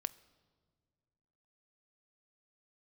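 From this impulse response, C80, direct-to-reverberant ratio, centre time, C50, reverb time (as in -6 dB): 21.5 dB, 16.0 dB, 2 ms, 20.0 dB, no single decay rate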